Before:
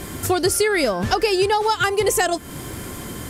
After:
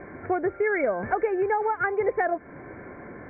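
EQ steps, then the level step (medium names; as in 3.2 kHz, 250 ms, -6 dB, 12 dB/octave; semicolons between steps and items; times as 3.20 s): rippled Chebyshev low-pass 2.3 kHz, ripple 6 dB; distance through air 140 m; bass shelf 150 Hz -11 dB; -1.5 dB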